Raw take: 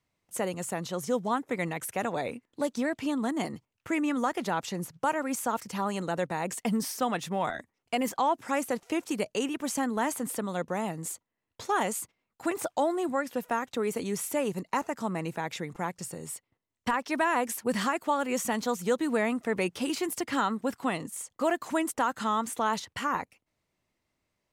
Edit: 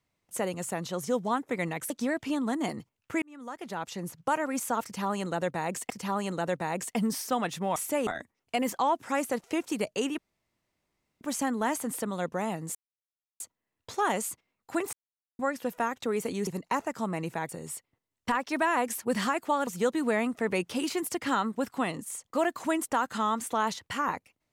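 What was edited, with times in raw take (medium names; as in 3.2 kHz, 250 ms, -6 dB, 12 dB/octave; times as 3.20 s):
1.90–2.66 s: delete
3.98–5.04 s: fade in
5.60–6.66 s: loop, 2 plays
9.57 s: insert room tone 1.03 s
11.11 s: insert silence 0.65 s
12.64–13.10 s: mute
14.18–14.49 s: move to 7.46 s
15.51–16.08 s: delete
18.26–18.73 s: delete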